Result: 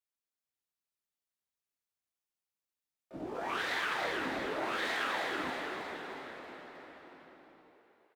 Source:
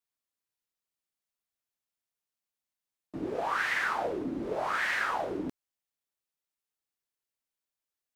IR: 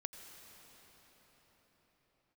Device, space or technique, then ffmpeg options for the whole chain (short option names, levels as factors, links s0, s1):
shimmer-style reverb: -filter_complex "[0:a]asettb=1/sr,asplit=3[s0][s1][s2];[s0]atrim=end=4.494[s3];[s1]atrim=start=4.49:end=5.44,asetpts=PTS-STARTPTS,afade=t=in:d=0.004:c=qsin,afade=t=out:st=0.946:d=0.004:c=qsin,highpass=180[s4];[s2]atrim=start=5.436[s5];[s3][s4]acrossfade=d=0.004:c1=hsin:c2=qsin[s6];[s6][s5]acrossfade=d=0.004:c1=qsin:c2=hsin,asplit=2[s7][s8];[s8]asetrate=88200,aresample=44100,atempo=0.5,volume=0.447[s9];[s7][s9]amix=inputs=2:normalize=0[s10];[1:a]atrim=start_sample=2205[s11];[s10][s11]afir=irnorm=-1:irlink=0,asplit=8[s12][s13][s14][s15][s16][s17][s18][s19];[s13]adelay=316,afreqshift=62,volume=0.596[s20];[s14]adelay=632,afreqshift=124,volume=0.309[s21];[s15]adelay=948,afreqshift=186,volume=0.16[s22];[s16]adelay=1264,afreqshift=248,volume=0.0841[s23];[s17]adelay=1580,afreqshift=310,volume=0.0437[s24];[s18]adelay=1896,afreqshift=372,volume=0.0226[s25];[s19]adelay=2212,afreqshift=434,volume=0.0117[s26];[s12][s20][s21][s22][s23][s24][s25][s26]amix=inputs=8:normalize=0,volume=0.708"